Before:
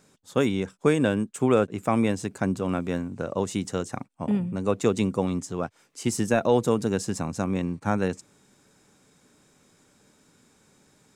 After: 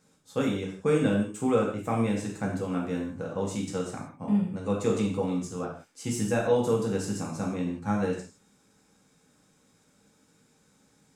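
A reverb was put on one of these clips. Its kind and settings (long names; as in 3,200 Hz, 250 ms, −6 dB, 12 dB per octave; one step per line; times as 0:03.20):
reverb whose tail is shaped and stops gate 200 ms falling, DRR −2.5 dB
level −8.5 dB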